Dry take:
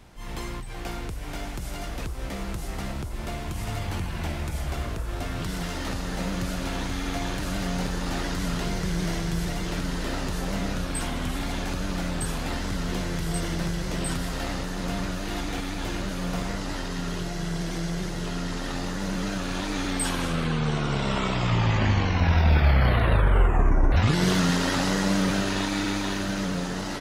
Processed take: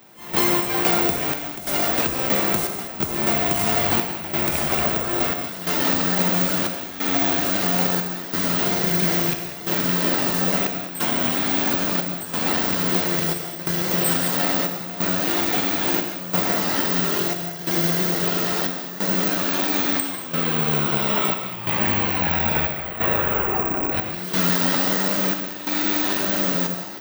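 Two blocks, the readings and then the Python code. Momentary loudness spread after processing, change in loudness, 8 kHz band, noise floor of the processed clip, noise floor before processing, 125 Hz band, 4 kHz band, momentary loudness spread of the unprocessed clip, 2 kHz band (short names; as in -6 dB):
6 LU, +7.5 dB, +6.5 dB, -33 dBFS, -34 dBFS, -4.0 dB, +6.0 dB, 12 LU, +5.5 dB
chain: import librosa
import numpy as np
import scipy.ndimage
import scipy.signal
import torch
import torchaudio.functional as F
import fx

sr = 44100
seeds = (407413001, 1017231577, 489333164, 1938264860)

y = fx.rattle_buzz(x, sr, strikes_db=-22.0, level_db=-26.0)
y = scipy.signal.sosfilt(scipy.signal.butter(2, 210.0, 'highpass', fs=sr, output='sos'), y)
y = fx.rider(y, sr, range_db=10, speed_s=2.0)
y = fx.step_gate(y, sr, bpm=90, pattern='..xxxxxx', floor_db=-12.0, edge_ms=4.5)
y = fx.rev_gated(y, sr, seeds[0], gate_ms=240, shape='flat', drr_db=5.5)
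y = (np.kron(y[::2], np.eye(2)[0]) * 2)[:len(y)]
y = F.gain(torch.from_numpy(y), 6.0).numpy()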